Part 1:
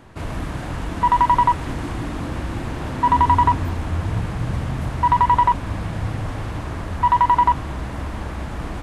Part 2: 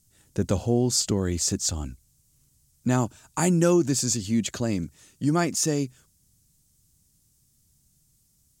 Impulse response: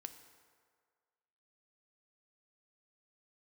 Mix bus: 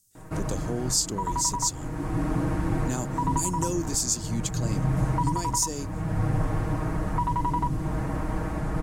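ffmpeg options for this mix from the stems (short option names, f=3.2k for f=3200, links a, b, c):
-filter_complex "[0:a]equalizer=f=3.4k:w=1.1:g=-11,aecho=1:1:6.4:0.81,adelay=150,volume=-2.5dB[a];[1:a]bass=f=250:g=-6,treble=f=4k:g=10,volume=-8.5dB,asplit=2[b][c];[c]apad=whole_len=396121[d];[a][d]sidechaincompress=threshold=-31dB:ratio=8:attack=5.7:release=670[e];[e][b]amix=inputs=2:normalize=0,lowshelf=f=390:g=3,acrossover=split=430|3000[f][g][h];[g]acompressor=threshold=-29dB:ratio=6[i];[f][i][h]amix=inputs=3:normalize=0"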